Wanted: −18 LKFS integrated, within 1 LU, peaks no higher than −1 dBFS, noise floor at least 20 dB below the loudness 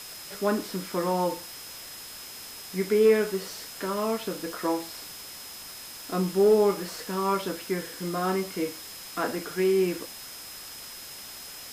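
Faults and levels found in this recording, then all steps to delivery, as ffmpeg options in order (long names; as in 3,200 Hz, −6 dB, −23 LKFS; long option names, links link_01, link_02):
interfering tone 5,100 Hz; level of the tone −45 dBFS; background noise floor −42 dBFS; target noise floor −48 dBFS; integrated loudness −27.5 LKFS; sample peak −11.5 dBFS; target loudness −18.0 LKFS
→ -af "bandreject=frequency=5100:width=30"
-af "afftdn=noise_reduction=6:noise_floor=-42"
-af "volume=9.5dB"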